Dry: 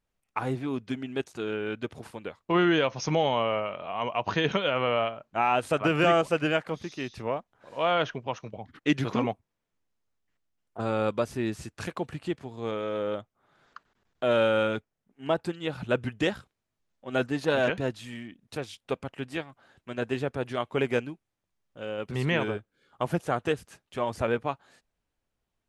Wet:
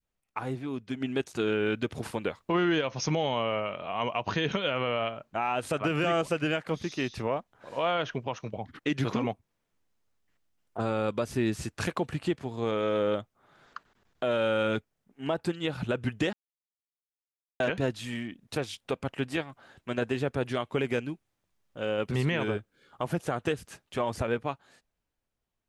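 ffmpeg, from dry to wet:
-filter_complex "[0:a]asplit=3[a][b][c];[a]afade=t=out:st=1:d=0.02[d];[b]acontrast=67,afade=t=in:st=1:d=0.02,afade=t=out:st=2.8:d=0.02[e];[c]afade=t=in:st=2.8:d=0.02[f];[d][e][f]amix=inputs=3:normalize=0,asplit=3[g][h][i];[g]atrim=end=16.33,asetpts=PTS-STARTPTS,afade=t=out:st=16.326:d=0.004:c=hsin[j];[h]atrim=start=16.33:end=17.6,asetpts=PTS-STARTPTS,volume=0[k];[i]atrim=start=17.6,asetpts=PTS-STARTPTS,afade=t=in:d=0.004:c=hsin[l];[j][k][l]concat=n=3:v=0:a=1,adynamicequalizer=threshold=0.0112:dfrequency=830:dqfactor=0.72:tfrequency=830:tqfactor=0.72:attack=5:release=100:ratio=0.375:range=2:mode=cutabove:tftype=bell,dynaudnorm=f=130:g=21:m=8.5dB,alimiter=limit=-14dB:level=0:latency=1:release=160,volume=-3.5dB"

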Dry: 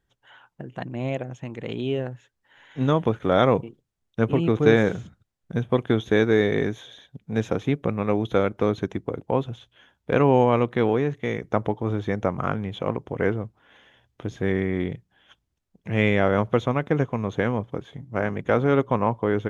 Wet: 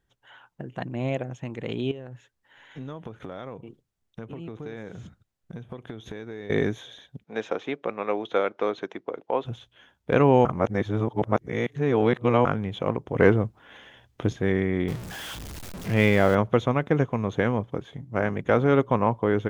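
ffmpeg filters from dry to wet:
-filter_complex "[0:a]asettb=1/sr,asplit=3[a][b][c];[a]atrim=end=1.914[d];[b]atrim=start=1.91:end=6.5,asetpts=PTS-STARTPTS,afade=t=in:d=0.004:c=qsin,afade=t=out:st=4.586:d=0.004:c=qsin,acompressor=threshold=-35dB:ratio=6:attack=3.2:release=140:knee=1:detection=peak[e];[c]atrim=start=6.496[f];[d][e]acrossfade=d=0.004:c1=hsin:c2=qsin[g];[g][f]acrossfade=d=0.004:c1=qsin:c2=hsin,asplit=3[h][i][j];[h]afade=t=out:st=7.23:d=0.02[k];[i]highpass=440,lowpass=4.7k,afade=t=in:st=7.23:d=0.02,afade=t=out:st=9.44:d=0.02[l];[j]afade=t=in:st=9.44:d=0.02[m];[k][l][m]amix=inputs=3:normalize=0,asettb=1/sr,asplit=3[n][o][p];[n]atrim=end=13.144[q];[o]atrim=start=13.14:end=14.33,asetpts=PTS-STARTPTS,afade=t=in:d=0.004:c=qsin,afade=t=out:st=1.186:d=0.004:c=qsin,acontrast=54[r];[p]atrim=start=14.326[s];[q][r]acrossfade=d=0.004:c1=hsin:c2=qsin[t];[t][s]acrossfade=d=0.004:c1=qsin:c2=hsin,asettb=1/sr,asplit=3[u][v][w];[u]atrim=end=14.884[x];[v]atrim=start=14.88:end=16.35,asetpts=PTS-STARTPTS,afade=t=in:d=0.004:c=qsin,afade=t=out:st=1.466:d=0.004:c=qsin,aeval=exprs='val(0)+0.5*0.0266*sgn(val(0))':c=same[y];[w]atrim=start=16.346[z];[x][y]acrossfade=d=0.004:c1=hsin:c2=qsin[aa];[aa][z]acrossfade=d=0.004:c1=qsin:c2=hsin,asplit=3[ab][ac][ad];[ab]atrim=end=10.452[ae];[ac]atrim=start=10.448:end=12.452,asetpts=PTS-STARTPTS,areverse[af];[ad]atrim=start=12.448[ag];[ae][af]acrossfade=d=0.004:c1=hsin:c2=hsin[ah];[ah][ag]acrossfade=d=0.004:c1=hsin:c2=hsin"

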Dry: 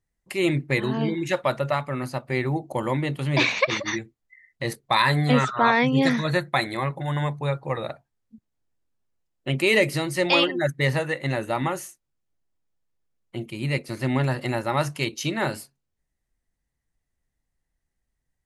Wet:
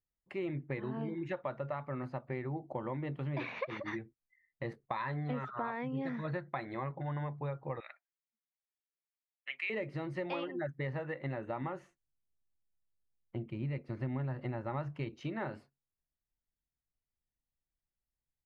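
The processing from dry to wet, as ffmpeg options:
-filter_complex "[0:a]asettb=1/sr,asplit=3[a][b][c];[a]atrim=end=7.804[d];[b]atrim=start=7.8:end=9.7,asetpts=PTS-STARTPTS,afade=t=in:d=0.004:c=qsin,afade=t=out:st=1.896:d=0.004:c=qsin,highpass=f=2.1k:t=q:w=3.4[e];[c]atrim=start=9.696[f];[d][e]acrossfade=d=0.004:c1=hsin:c2=qsin[g];[g][f]acrossfade=d=0.004:c1=qsin:c2=hsin,asettb=1/sr,asplit=3[h][i][j];[h]atrim=end=11.814[k];[i]atrim=start=11.81:end=15.21,asetpts=PTS-STARTPTS,afade=t=in:d=0.004:c=qsin,afade=t=out:st=3.396:d=0.004:c=qsin,lowshelf=f=160:g=9[l];[j]atrim=start=15.206[m];[k][l]acrossfade=d=0.004:c1=hsin:c2=qsin[n];[n][m]acrossfade=d=0.004:c1=qsin:c2=hsin,agate=range=-7dB:threshold=-44dB:ratio=16:detection=peak,lowpass=1.7k,acompressor=threshold=-27dB:ratio=5,volume=-7.5dB"

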